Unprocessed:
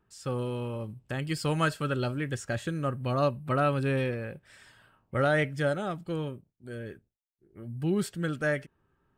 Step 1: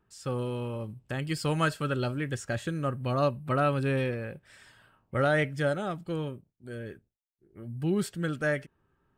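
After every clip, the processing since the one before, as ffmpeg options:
-af anull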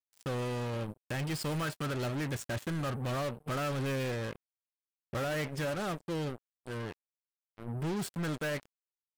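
-af "alimiter=limit=-21dB:level=0:latency=1:release=180,acrusher=bits=5:mix=0:aa=0.5,asoftclip=type=tanh:threshold=-33.5dB,volume=3dB"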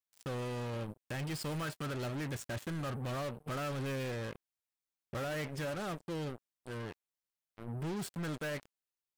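-af "alimiter=level_in=10.5dB:limit=-24dB:level=0:latency=1:release=34,volume=-10.5dB"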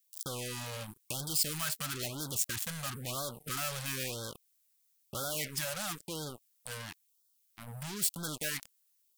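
-af "acompressor=threshold=-39dB:ratio=6,crystalizer=i=8:c=0,afftfilt=real='re*(1-between(b*sr/1024,300*pow(2300/300,0.5+0.5*sin(2*PI*1*pts/sr))/1.41,300*pow(2300/300,0.5+0.5*sin(2*PI*1*pts/sr))*1.41))':imag='im*(1-between(b*sr/1024,300*pow(2300/300,0.5+0.5*sin(2*PI*1*pts/sr))/1.41,300*pow(2300/300,0.5+0.5*sin(2*PI*1*pts/sr))*1.41))':win_size=1024:overlap=0.75,volume=-1dB"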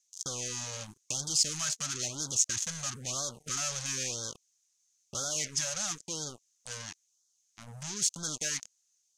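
-af "lowpass=f=6.4k:t=q:w=7.2,volume=-2dB"

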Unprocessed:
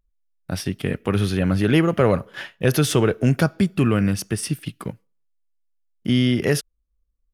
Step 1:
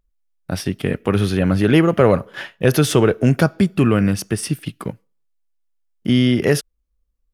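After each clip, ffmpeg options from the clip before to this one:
-af "equalizer=f=540:w=0.38:g=3,volume=1.5dB"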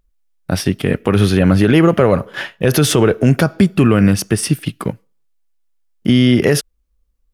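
-af "alimiter=level_in=7dB:limit=-1dB:release=50:level=0:latency=1,volume=-1dB"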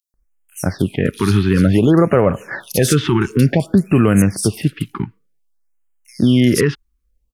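-filter_complex "[0:a]acrossover=split=3700[a][b];[a]adelay=140[c];[c][b]amix=inputs=2:normalize=0,afftfilt=real='re*(1-between(b*sr/1024,550*pow(4700/550,0.5+0.5*sin(2*PI*0.55*pts/sr))/1.41,550*pow(4700/550,0.5+0.5*sin(2*PI*0.55*pts/sr))*1.41))':imag='im*(1-between(b*sr/1024,550*pow(4700/550,0.5+0.5*sin(2*PI*0.55*pts/sr))/1.41,550*pow(4700/550,0.5+0.5*sin(2*PI*0.55*pts/sr))*1.41))':win_size=1024:overlap=0.75,volume=-1dB"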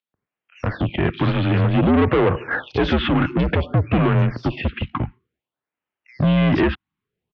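-af "aresample=16000,asoftclip=type=tanh:threshold=-17.5dB,aresample=44100,highpass=f=160:t=q:w=0.5412,highpass=f=160:t=q:w=1.307,lowpass=f=3.5k:t=q:w=0.5176,lowpass=f=3.5k:t=q:w=0.7071,lowpass=f=3.5k:t=q:w=1.932,afreqshift=-76,volume=5dB"

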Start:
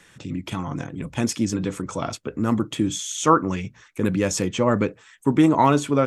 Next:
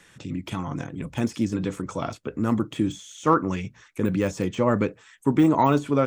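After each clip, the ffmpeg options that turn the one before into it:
-af "deesser=0.9,volume=-1.5dB"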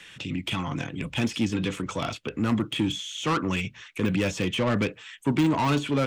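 -filter_complex "[0:a]equalizer=f=2.9k:t=o:w=1.2:g=14,acrossover=split=220[a][b];[b]asoftclip=type=tanh:threshold=-22.5dB[c];[a][c]amix=inputs=2:normalize=0"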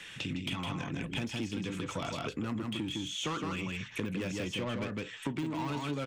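-af "aecho=1:1:159:0.631,acompressor=threshold=-33dB:ratio=6"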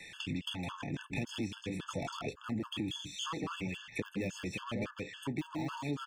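-af "afftfilt=real='re*gt(sin(2*PI*3.6*pts/sr)*(1-2*mod(floor(b*sr/1024/880),2)),0)':imag='im*gt(sin(2*PI*3.6*pts/sr)*(1-2*mod(floor(b*sr/1024/880),2)),0)':win_size=1024:overlap=0.75"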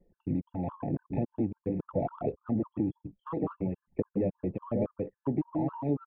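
-af "lowpass=f=660:t=q:w=1.6,anlmdn=0.00631,volume=6dB"

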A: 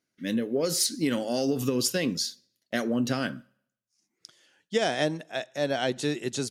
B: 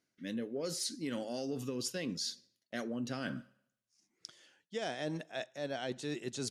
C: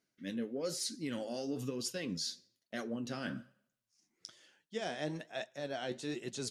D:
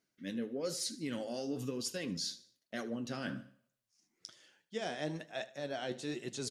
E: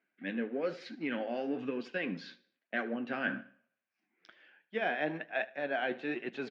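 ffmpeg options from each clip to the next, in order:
-af "lowpass=10k,areverse,acompressor=threshold=-37dB:ratio=4,areverse"
-af "flanger=delay=4.2:depth=9.8:regen=59:speed=1.1:shape=triangular,volume=3.5dB"
-af "aecho=1:1:76|152|228:0.126|0.0504|0.0201"
-filter_complex "[0:a]asplit=2[a][b];[b]aeval=exprs='sgn(val(0))*max(abs(val(0))-0.00282,0)':c=same,volume=-6dB[c];[a][c]amix=inputs=2:normalize=0,highpass=f=190:w=0.5412,highpass=f=190:w=1.3066,equalizer=f=750:t=q:w=4:g=5,equalizer=f=1.6k:t=q:w=4:g=9,equalizer=f=2.4k:t=q:w=4:g=8,lowpass=f=2.9k:w=0.5412,lowpass=f=2.9k:w=1.3066"

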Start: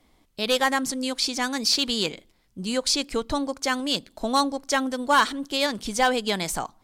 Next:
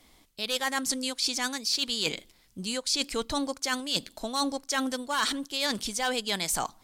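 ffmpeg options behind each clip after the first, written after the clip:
-af "highshelf=f=2.1k:g=9.5,areverse,acompressor=threshold=-26dB:ratio=6,areverse"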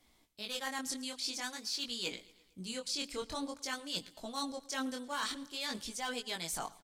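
-af "flanger=delay=16.5:depth=7.8:speed=0.49,aecho=1:1:113|226|339|452:0.0794|0.0461|0.0267|0.0155,volume=-6.5dB"

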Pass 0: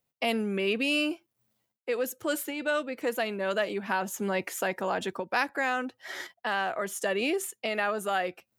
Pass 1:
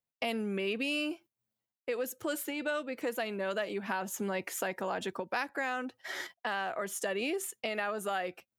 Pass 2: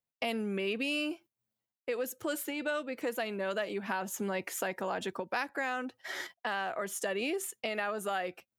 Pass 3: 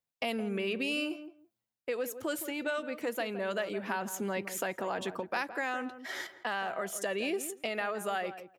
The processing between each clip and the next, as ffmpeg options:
-af "agate=range=-13dB:threshold=-49dB:ratio=16:detection=peak,acompressor=threshold=-34dB:ratio=2"
-af anull
-filter_complex "[0:a]asplit=2[a][b];[b]adelay=166,lowpass=f=1k:p=1,volume=-10dB,asplit=2[c][d];[d]adelay=166,lowpass=f=1k:p=1,volume=0.17[e];[a][c][e]amix=inputs=3:normalize=0"

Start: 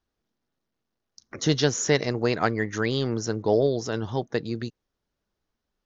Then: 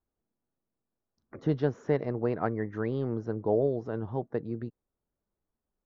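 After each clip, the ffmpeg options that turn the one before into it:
-af "lowpass=1.1k,volume=-4.5dB"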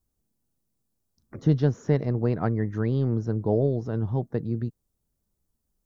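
-af "bass=f=250:g=11,treble=f=4k:g=13"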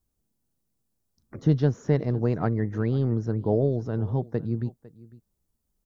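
-af "aecho=1:1:502:0.0944"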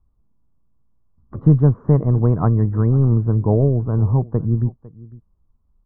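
-af "lowpass=f=1.1k:t=q:w=4.9,aemphasis=mode=reproduction:type=riaa,volume=-1dB"

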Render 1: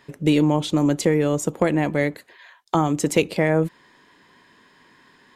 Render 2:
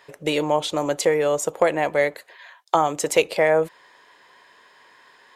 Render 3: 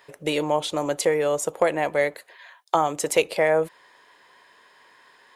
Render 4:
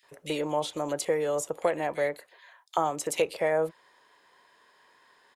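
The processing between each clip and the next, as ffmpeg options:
-af "lowshelf=f=370:t=q:w=1.5:g=-12.5,volume=2dB"
-af "aexciter=amount=1.9:drive=1.2:freq=9.3k,volume=-2dB"
-filter_complex "[0:a]acrossover=split=2300[a][b];[a]adelay=30[c];[c][b]amix=inputs=2:normalize=0,volume=-5.5dB"

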